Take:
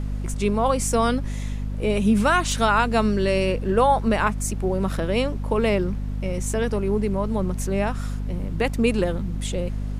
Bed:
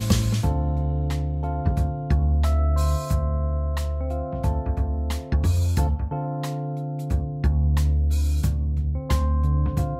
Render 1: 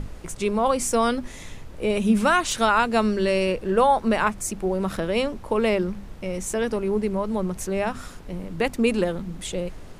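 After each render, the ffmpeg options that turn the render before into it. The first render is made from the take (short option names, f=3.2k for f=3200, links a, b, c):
-af "bandreject=f=50:t=h:w=6,bandreject=f=100:t=h:w=6,bandreject=f=150:t=h:w=6,bandreject=f=200:t=h:w=6,bandreject=f=250:t=h:w=6"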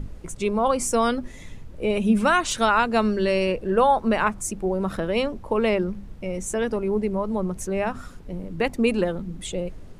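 -af "afftdn=nr=8:nf=-40"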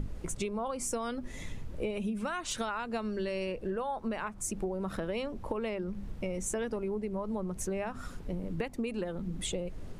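-af "alimiter=limit=-14dB:level=0:latency=1:release=363,acompressor=threshold=-31dB:ratio=10"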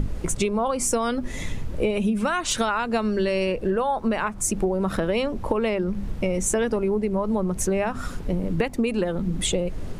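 -af "volume=11dB"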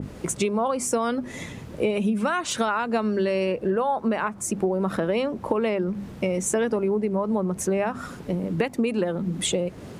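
-af "highpass=130,adynamicequalizer=threshold=0.00891:dfrequency=2200:dqfactor=0.7:tfrequency=2200:tqfactor=0.7:attack=5:release=100:ratio=0.375:range=2.5:mode=cutabove:tftype=highshelf"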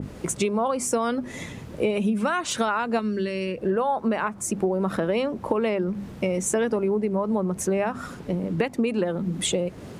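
-filter_complex "[0:a]asettb=1/sr,asplit=3[a][b][c];[a]atrim=end=2.994[d];[b]atrim=start=2.99:end=3.58,asetpts=PTS-STARTPTS,afade=t=in:d=0.004:c=qsin,afade=t=out:st=0.586:d=0.004:c=qsin,equalizer=f=770:w=1.3:g=-15[e];[c]atrim=start=3.576[f];[d][e]acrossfade=d=0.004:c1=hsin:c2=qsin[g];[g][f]acrossfade=d=0.004:c1=qsin:c2=hsin,asettb=1/sr,asplit=3[h][i][j];[h]atrim=end=8.144[k];[i]atrim=start=8.14:end=9.1,asetpts=PTS-STARTPTS,afade=t=in:d=0.004:c=qsin,afade=t=out:st=0.956:d=0.004:c=qsin,highshelf=f=9.7k:g=-5.5[l];[j]atrim=start=9.096[m];[k][l]acrossfade=d=0.004:c1=hsin:c2=qsin[n];[n][m]acrossfade=d=0.004:c1=qsin:c2=hsin"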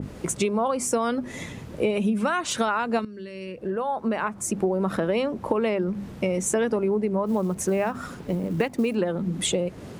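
-filter_complex "[0:a]asettb=1/sr,asplit=3[a][b][c];[a]atrim=end=7.264[d];[b]atrim=start=7.26:end=8.95,asetpts=PTS-STARTPTS,afade=t=in:d=0.004:c=qsin,afade=t=out:st=1.686:d=0.004:c=qsin,acrusher=bits=8:mode=log:mix=0:aa=0.000001[e];[c]atrim=start=8.946[f];[d][e]acrossfade=d=0.004:c1=hsin:c2=qsin[g];[g][f]acrossfade=d=0.004:c1=qsin:c2=hsin,asplit=2[h][i];[h]atrim=end=3.05,asetpts=PTS-STARTPTS,afade=t=out:st=3.046:d=0.004:c=hsin:silence=0.16788[j];[i]atrim=start=3.05,asetpts=PTS-STARTPTS,afade=t=in:d=1.32:silence=0.16788[k];[j][k]concat=n=2:v=0:a=1"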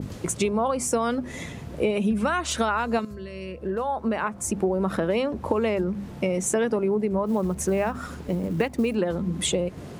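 -filter_complex "[1:a]volume=-21.5dB[a];[0:a][a]amix=inputs=2:normalize=0"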